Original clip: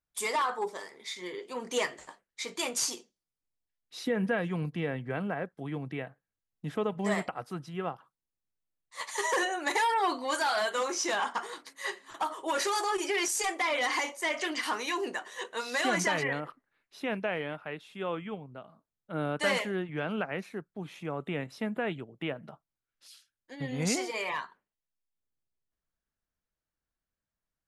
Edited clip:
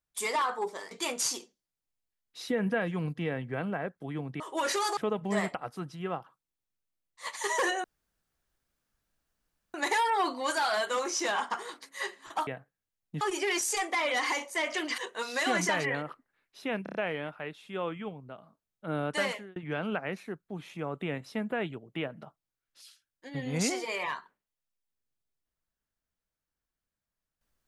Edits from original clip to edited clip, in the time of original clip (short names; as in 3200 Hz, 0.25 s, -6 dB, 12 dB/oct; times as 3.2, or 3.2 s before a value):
0.91–2.48 cut
5.97–6.71 swap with 12.31–12.88
9.58 insert room tone 1.90 s
14.65–15.36 cut
17.21 stutter 0.03 s, 5 plays
19.38–19.82 fade out